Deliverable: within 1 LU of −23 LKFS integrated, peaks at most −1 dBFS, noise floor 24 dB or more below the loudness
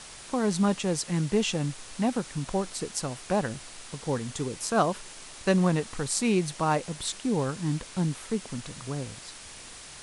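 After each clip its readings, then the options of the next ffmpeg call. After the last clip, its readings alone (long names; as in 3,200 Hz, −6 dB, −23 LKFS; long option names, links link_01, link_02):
background noise floor −45 dBFS; target noise floor −53 dBFS; integrated loudness −29.0 LKFS; sample peak −9.5 dBFS; target loudness −23.0 LKFS
→ -af "afftdn=noise_reduction=8:noise_floor=-45"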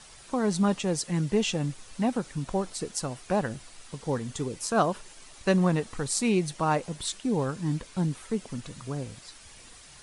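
background noise floor −50 dBFS; target noise floor −53 dBFS
→ -af "afftdn=noise_reduction=6:noise_floor=-50"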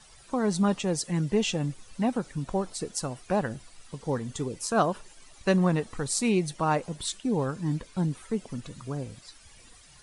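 background noise floor −54 dBFS; integrated loudness −29.0 LKFS; sample peak −10.0 dBFS; target loudness −23.0 LKFS
→ -af "volume=6dB"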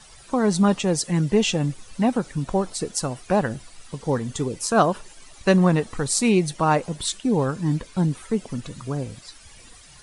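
integrated loudness −23.0 LKFS; sample peak −4.0 dBFS; background noise floor −48 dBFS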